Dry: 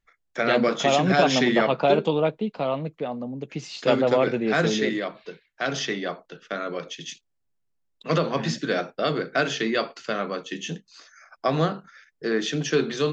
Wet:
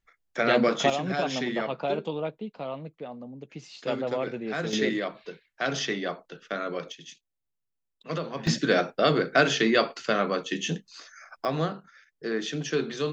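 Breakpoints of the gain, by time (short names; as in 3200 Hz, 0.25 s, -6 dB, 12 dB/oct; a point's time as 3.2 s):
-1 dB
from 0.9 s -9 dB
from 4.73 s -1.5 dB
from 6.92 s -9 dB
from 8.47 s +2.5 dB
from 11.45 s -5 dB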